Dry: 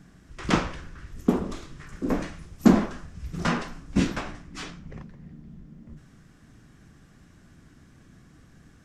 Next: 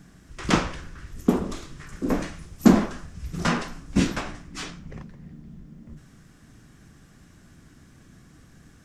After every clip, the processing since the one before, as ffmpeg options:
-af "highshelf=f=5.7k:g=6,volume=1.5dB"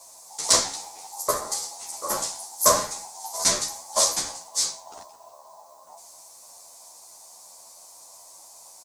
-filter_complex "[0:a]aeval=exprs='val(0)*sin(2*PI*830*n/s)':c=same,aexciter=amount=12.6:drive=6.3:freq=4.2k,asplit=2[a][b];[b]adelay=11.1,afreqshift=2.8[c];[a][c]amix=inputs=2:normalize=1"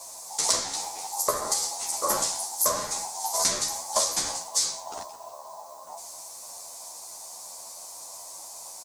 -af "acompressor=threshold=-27dB:ratio=12,volume=6dB"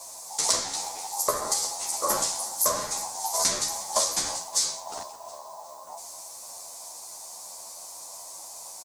-af "aecho=1:1:361|722|1083|1444:0.1|0.048|0.023|0.0111"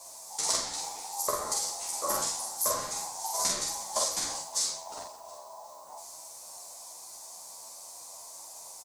-filter_complex "[0:a]asplit=2[a][b];[b]adelay=46,volume=-3dB[c];[a][c]amix=inputs=2:normalize=0,volume=-6dB"

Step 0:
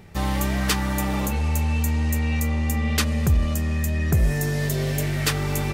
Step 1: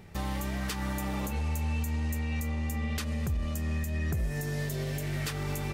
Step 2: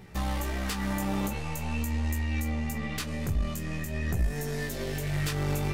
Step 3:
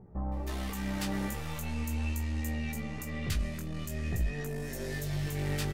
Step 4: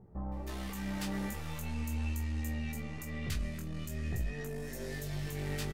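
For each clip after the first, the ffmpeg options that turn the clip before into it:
-af "alimiter=limit=-20dB:level=0:latency=1:release=229,volume=-4dB"
-af "aeval=exprs='0.0668*(cos(1*acos(clip(val(0)/0.0668,-1,1)))-cos(1*PI/2))+0.0133*(cos(2*acos(clip(val(0)/0.0668,-1,1)))-cos(2*PI/2))':c=same,flanger=delay=16:depth=4.6:speed=0.45,volume=5dB"
-filter_complex "[0:a]acrossover=split=1000[a][b];[b]adelay=320[c];[a][c]amix=inputs=2:normalize=0,volume=-3.5dB"
-filter_complex "[0:a]asplit=2[a][b];[b]adelay=25,volume=-11dB[c];[a][c]amix=inputs=2:normalize=0,volume=-4dB"

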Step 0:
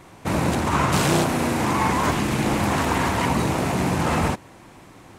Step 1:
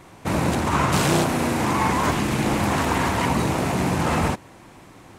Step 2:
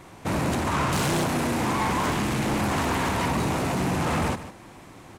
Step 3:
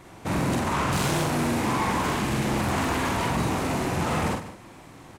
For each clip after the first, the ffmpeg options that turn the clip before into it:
-af anull
-af "asoftclip=type=tanh:threshold=-20.5dB,aecho=1:1:151:0.211"
-filter_complex "[0:a]asplit=2[a][b];[b]adelay=46,volume=-3.5dB[c];[a][c]amix=inputs=2:normalize=0,volume=-2dB"

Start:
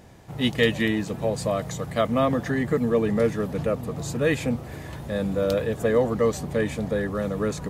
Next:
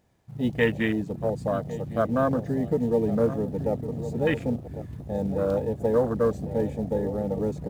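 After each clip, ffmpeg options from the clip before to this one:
-af "aecho=1:1:1104|2208|3312:0.251|0.0754|0.0226,acrusher=bits=4:mode=log:mix=0:aa=0.000001,afwtdn=0.0501,volume=-1.5dB"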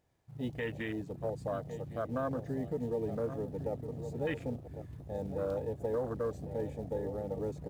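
-af "alimiter=limit=-16.5dB:level=0:latency=1:release=75,equalizer=f=210:t=o:w=0.36:g=-8,volume=-8dB"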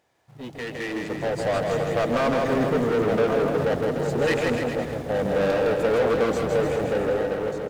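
-filter_complex "[0:a]asplit=2[a][b];[b]highpass=f=720:p=1,volume=24dB,asoftclip=type=tanh:threshold=-23.5dB[c];[a][c]amix=inputs=2:normalize=0,lowpass=f=4.9k:p=1,volume=-6dB,dynaudnorm=f=440:g=5:m=12dB,asplit=2[d][e];[e]aecho=0:1:160|296|411.6|509.9|593.4:0.631|0.398|0.251|0.158|0.1[f];[d][f]amix=inputs=2:normalize=0,volume=-5dB"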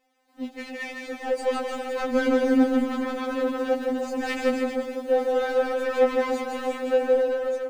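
-af "afftfilt=real='re*3.46*eq(mod(b,12),0)':imag='im*3.46*eq(mod(b,12),0)':win_size=2048:overlap=0.75"

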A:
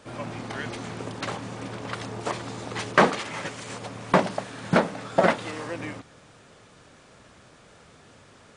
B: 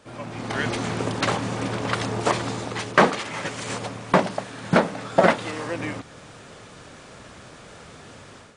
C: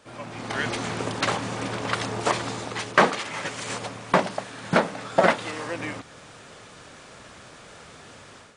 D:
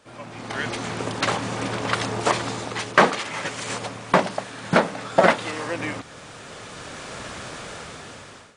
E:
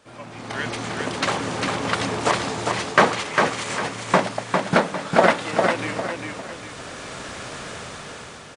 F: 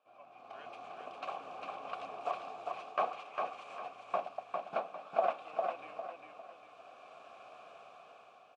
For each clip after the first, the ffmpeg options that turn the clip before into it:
-af "dynaudnorm=f=310:g=3:m=10.5dB,volume=-2dB"
-af "lowshelf=f=500:g=-5"
-af "dynaudnorm=f=400:g=7:m=15.5dB,volume=-1dB"
-af "aecho=1:1:402|804|1206|1608|2010:0.631|0.227|0.0818|0.0294|0.0106"
-filter_complex "[0:a]asplit=3[a][b][c];[a]bandpass=f=730:t=q:w=8,volume=0dB[d];[b]bandpass=f=1.09k:t=q:w=8,volume=-6dB[e];[c]bandpass=f=2.44k:t=q:w=8,volume=-9dB[f];[d][e][f]amix=inputs=3:normalize=0,volume=-8dB"

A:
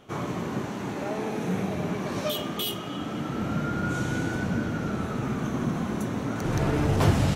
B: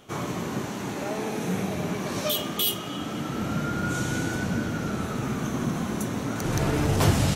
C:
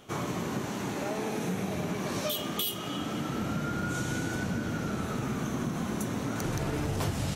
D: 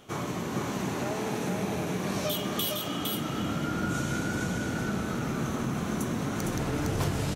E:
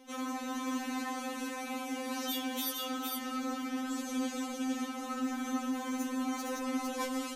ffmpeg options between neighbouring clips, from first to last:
-af "highshelf=f=4k:g=9.5"
-af "acompressor=threshold=-27dB:ratio=5,volume=-1dB"
-af "aecho=1:1:459:0.708"
-af "afftfilt=real='re*3.46*eq(mod(b,12),0)':imag='im*3.46*eq(mod(b,12),0)':win_size=2048:overlap=0.75,volume=-1.5dB"

